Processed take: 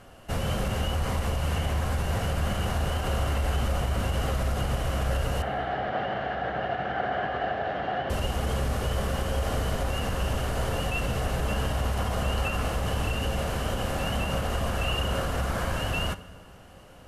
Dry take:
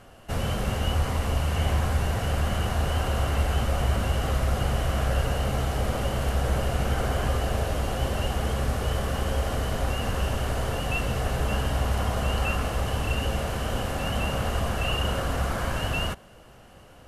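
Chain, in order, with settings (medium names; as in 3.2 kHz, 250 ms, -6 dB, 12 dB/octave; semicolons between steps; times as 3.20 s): peak limiter -18.5 dBFS, peak gain reduction 6.5 dB; 5.42–8.10 s: cabinet simulation 190–3300 Hz, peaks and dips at 240 Hz -4 dB, 510 Hz -4 dB, 730 Hz +10 dB, 1 kHz -5 dB, 1.7 kHz +8 dB, 2.5 kHz -5 dB; reverberation RT60 1.7 s, pre-delay 3 ms, DRR 14 dB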